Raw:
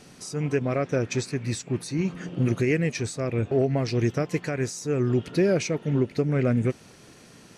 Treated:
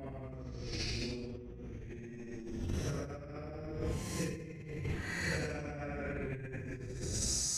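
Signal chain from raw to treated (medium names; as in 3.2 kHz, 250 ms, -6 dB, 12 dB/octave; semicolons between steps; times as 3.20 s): octave divider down 1 oct, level -1 dB; Paulstretch 7.9×, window 0.10 s, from 3.78 s; compressor with a negative ratio -34 dBFS, ratio -1; trim -7 dB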